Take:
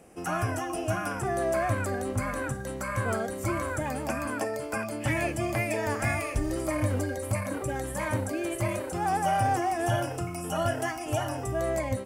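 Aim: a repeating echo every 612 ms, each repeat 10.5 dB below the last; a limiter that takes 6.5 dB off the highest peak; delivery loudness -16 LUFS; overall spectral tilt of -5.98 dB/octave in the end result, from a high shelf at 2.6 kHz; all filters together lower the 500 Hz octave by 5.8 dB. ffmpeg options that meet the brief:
-af "equalizer=f=500:t=o:g=-8,highshelf=f=2600:g=-7,alimiter=limit=0.0631:level=0:latency=1,aecho=1:1:612|1224|1836:0.299|0.0896|0.0269,volume=7.94"

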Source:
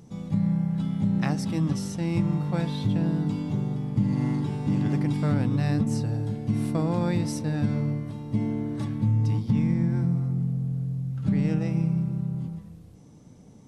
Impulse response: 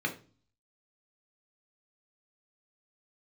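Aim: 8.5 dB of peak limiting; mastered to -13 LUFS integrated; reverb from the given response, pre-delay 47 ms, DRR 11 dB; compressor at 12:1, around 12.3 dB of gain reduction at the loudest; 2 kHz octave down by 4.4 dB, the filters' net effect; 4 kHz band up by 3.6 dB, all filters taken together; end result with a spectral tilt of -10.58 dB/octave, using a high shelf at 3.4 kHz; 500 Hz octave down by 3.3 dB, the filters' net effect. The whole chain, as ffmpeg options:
-filter_complex "[0:a]equalizer=f=500:t=o:g=-4,equalizer=f=2000:t=o:g=-6.5,highshelf=f=3400:g=-4,equalizer=f=4000:t=o:g=9,acompressor=threshold=0.0251:ratio=12,alimiter=level_in=2.51:limit=0.0631:level=0:latency=1,volume=0.398,asplit=2[s0][s1];[1:a]atrim=start_sample=2205,adelay=47[s2];[s1][s2]afir=irnorm=-1:irlink=0,volume=0.133[s3];[s0][s3]amix=inputs=2:normalize=0,volume=20"

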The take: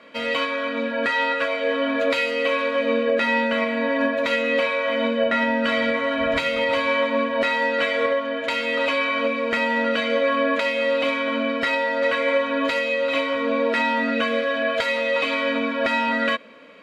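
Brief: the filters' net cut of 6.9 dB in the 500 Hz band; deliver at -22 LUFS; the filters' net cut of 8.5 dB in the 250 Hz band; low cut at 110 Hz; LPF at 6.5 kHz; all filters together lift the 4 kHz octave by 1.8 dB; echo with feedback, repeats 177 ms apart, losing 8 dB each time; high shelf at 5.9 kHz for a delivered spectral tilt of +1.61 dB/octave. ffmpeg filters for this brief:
-af "highpass=110,lowpass=6500,equalizer=f=250:t=o:g=-7.5,equalizer=f=500:t=o:g=-6.5,equalizer=f=4000:t=o:g=5,highshelf=f=5900:g=-6.5,aecho=1:1:177|354|531|708|885:0.398|0.159|0.0637|0.0255|0.0102,volume=1.12"

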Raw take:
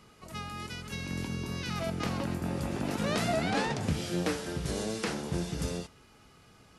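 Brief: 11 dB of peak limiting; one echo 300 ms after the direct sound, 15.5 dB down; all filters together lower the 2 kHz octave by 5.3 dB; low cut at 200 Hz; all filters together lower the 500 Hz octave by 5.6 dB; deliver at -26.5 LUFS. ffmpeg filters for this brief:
-af "highpass=200,equalizer=f=500:t=o:g=-7,equalizer=f=2000:t=o:g=-6.5,alimiter=level_in=1.78:limit=0.0631:level=0:latency=1,volume=0.562,aecho=1:1:300:0.168,volume=4.47"

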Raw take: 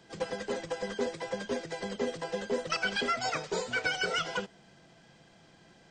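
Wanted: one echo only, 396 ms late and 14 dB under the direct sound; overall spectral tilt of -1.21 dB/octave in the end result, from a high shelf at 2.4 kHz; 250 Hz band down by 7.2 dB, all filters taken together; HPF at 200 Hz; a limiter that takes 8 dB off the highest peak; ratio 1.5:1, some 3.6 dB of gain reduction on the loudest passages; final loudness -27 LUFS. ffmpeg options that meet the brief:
-af "highpass=200,equalizer=f=250:t=o:g=-7,highshelf=f=2400:g=5,acompressor=threshold=0.02:ratio=1.5,alimiter=level_in=1.33:limit=0.0631:level=0:latency=1,volume=0.75,aecho=1:1:396:0.2,volume=3.16"

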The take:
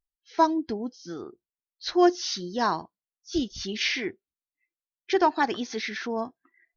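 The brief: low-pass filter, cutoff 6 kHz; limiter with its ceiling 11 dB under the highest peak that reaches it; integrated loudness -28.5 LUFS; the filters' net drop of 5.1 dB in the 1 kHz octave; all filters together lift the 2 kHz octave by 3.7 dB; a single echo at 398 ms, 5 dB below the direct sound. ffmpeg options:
-af "lowpass=6000,equalizer=f=1000:t=o:g=-7.5,equalizer=f=2000:t=o:g=6.5,alimiter=limit=0.106:level=0:latency=1,aecho=1:1:398:0.562,volume=1.33"

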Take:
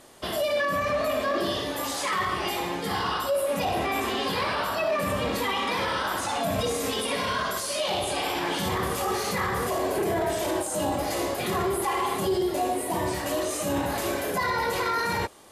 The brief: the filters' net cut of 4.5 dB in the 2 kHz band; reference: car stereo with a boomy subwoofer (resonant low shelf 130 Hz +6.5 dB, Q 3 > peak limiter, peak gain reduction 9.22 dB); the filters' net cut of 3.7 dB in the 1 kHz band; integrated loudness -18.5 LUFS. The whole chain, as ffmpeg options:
-af "lowshelf=f=130:t=q:w=3:g=6.5,equalizer=f=1000:t=o:g=-3.5,equalizer=f=2000:t=o:g=-4.5,volume=3.98,alimiter=limit=0.316:level=0:latency=1"

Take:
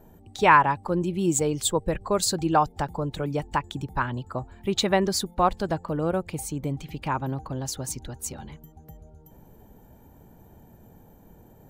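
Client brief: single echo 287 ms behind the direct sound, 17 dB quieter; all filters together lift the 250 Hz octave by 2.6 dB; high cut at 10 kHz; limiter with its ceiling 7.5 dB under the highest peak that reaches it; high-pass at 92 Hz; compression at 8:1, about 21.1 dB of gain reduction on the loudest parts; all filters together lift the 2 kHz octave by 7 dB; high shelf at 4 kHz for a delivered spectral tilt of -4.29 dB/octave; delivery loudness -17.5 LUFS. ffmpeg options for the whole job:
-af "highpass=92,lowpass=10000,equalizer=f=250:t=o:g=4,equalizer=f=2000:t=o:g=8,highshelf=f=4000:g=4.5,acompressor=threshold=0.0316:ratio=8,alimiter=level_in=1.06:limit=0.0631:level=0:latency=1,volume=0.944,aecho=1:1:287:0.141,volume=8.41"

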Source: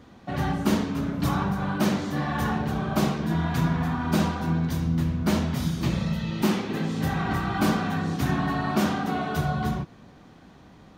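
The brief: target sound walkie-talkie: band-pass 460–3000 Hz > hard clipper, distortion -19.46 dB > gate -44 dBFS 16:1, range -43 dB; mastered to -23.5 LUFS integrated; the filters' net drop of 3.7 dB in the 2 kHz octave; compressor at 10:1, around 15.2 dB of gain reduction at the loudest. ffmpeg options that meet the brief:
-af "equalizer=f=2000:t=o:g=-4.5,acompressor=threshold=0.02:ratio=10,highpass=460,lowpass=3000,asoftclip=type=hard:threshold=0.0141,agate=range=0.00708:threshold=0.00631:ratio=16,volume=12.6"

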